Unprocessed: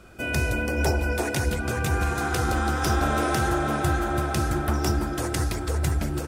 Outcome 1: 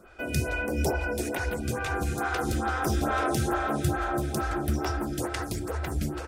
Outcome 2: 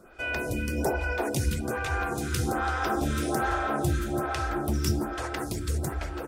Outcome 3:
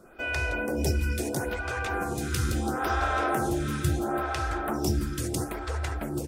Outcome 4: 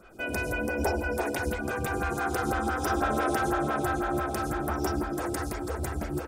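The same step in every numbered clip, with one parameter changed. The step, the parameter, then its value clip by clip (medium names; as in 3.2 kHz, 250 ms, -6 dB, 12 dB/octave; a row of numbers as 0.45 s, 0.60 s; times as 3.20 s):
lamp-driven phase shifter, rate: 2.3 Hz, 1.2 Hz, 0.74 Hz, 6 Hz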